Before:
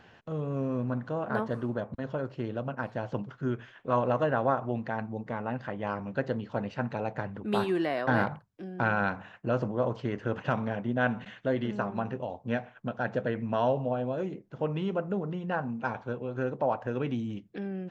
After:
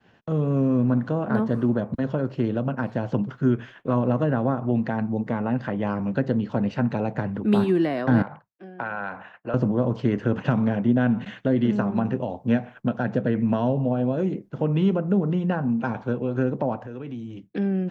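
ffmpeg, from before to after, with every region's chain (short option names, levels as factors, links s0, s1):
-filter_complex "[0:a]asettb=1/sr,asplit=3[s0][s1][s2];[s0]atrim=end=8.224[s3];[s1]atrim=start=8.22:end=9.54,asetpts=PTS-STARTPTS,afade=t=in:d=0.004:c=qsin,afade=t=out:st=1.316:d=0.004:c=qsin,acrossover=split=510 2900:gain=0.178 1 0.224[s4][s5][s6];[s4][s5][s6]amix=inputs=3:normalize=0,acompressor=threshold=0.02:ratio=2:attack=3.2:release=140:knee=1:detection=peak[s7];[s2]atrim=start=9.536[s8];[s3][s7]acrossfade=d=0.004:c1=hsin:c2=qsin[s9];[s9][s8]acrossfade=d=0.004:c1=qsin:c2=hsin,asettb=1/sr,asplit=3[s10][s11][s12];[s10]atrim=end=16.854[s13];[s11]atrim=start=16.85:end=17.5,asetpts=PTS-STARTPTS,afade=t=in:d=0.004:c=qsin,afade=t=out:st=0.646:d=0.004:c=qsin,bandreject=f=210:w=5.1,acompressor=threshold=0.00501:ratio=3:attack=3.2:release=140:knee=1:detection=peak[s14];[s12]atrim=start=17.496[s15];[s13][s14]acrossfade=d=0.004:c1=hsin:c2=qsin[s16];[s16][s15]acrossfade=d=0.004:c1=qsin:c2=hsin,agate=range=0.0224:threshold=0.00398:ratio=3:detection=peak,equalizer=f=220:w=0.87:g=6,acrossover=split=330[s17][s18];[s18]acompressor=threshold=0.0224:ratio=4[s19];[s17][s19]amix=inputs=2:normalize=0,volume=2.11"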